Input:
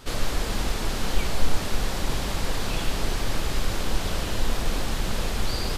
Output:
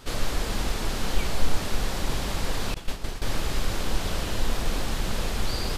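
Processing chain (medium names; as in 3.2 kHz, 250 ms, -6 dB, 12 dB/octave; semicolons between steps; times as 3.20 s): 2.74–3.22 s: expander -16 dBFS; trim -1 dB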